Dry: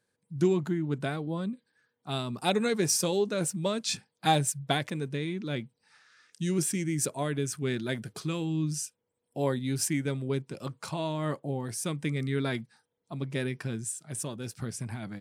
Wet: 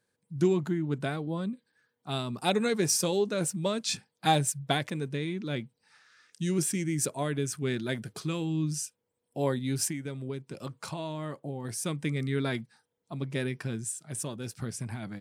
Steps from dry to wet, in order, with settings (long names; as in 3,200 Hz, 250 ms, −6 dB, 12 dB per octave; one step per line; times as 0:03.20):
0:09.89–0:11.65: downward compressor 4 to 1, threshold −33 dBFS, peak gain reduction 7.5 dB